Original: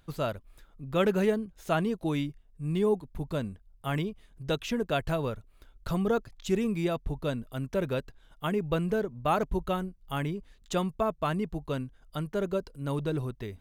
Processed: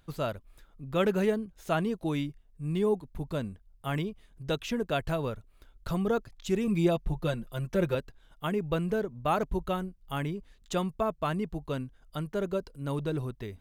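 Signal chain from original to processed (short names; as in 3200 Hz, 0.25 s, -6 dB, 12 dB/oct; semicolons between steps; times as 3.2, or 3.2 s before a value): 6.67–7.95 comb 5.7 ms, depth 89%; gain -1 dB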